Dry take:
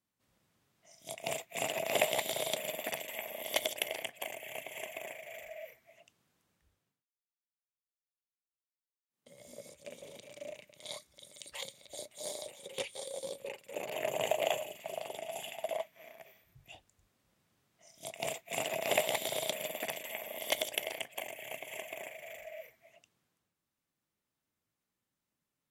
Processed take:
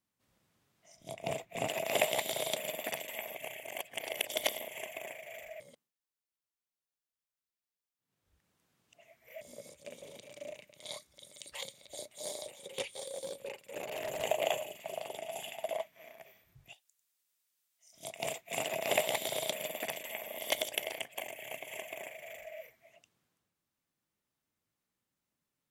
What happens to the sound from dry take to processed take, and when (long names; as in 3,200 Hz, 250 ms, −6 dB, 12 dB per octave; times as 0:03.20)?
0:00.96–0:01.68: spectral tilt −2.5 dB per octave
0:03.35–0:04.68: reverse
0:05.60–0:09.41: reverse
0:12.86–0:14.24: hard clipping −34 dBFS
0:16.73–0:17.93: first difference